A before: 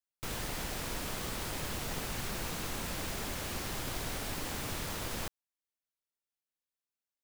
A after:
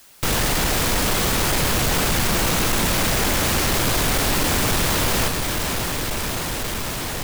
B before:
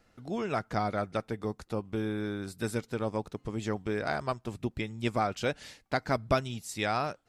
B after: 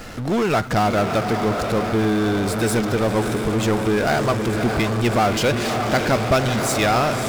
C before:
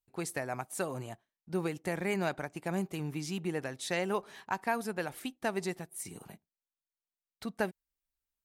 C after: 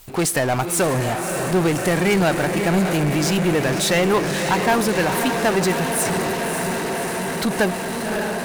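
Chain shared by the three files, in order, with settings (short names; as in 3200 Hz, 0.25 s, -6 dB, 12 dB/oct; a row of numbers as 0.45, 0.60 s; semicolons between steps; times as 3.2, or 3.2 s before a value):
diffused feedback echo 0.589 s, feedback 73%, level -10 dB; power-law curve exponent 0.5; match loudness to -20 LUFS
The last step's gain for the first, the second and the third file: +11.0, +5.0, +9.0 dB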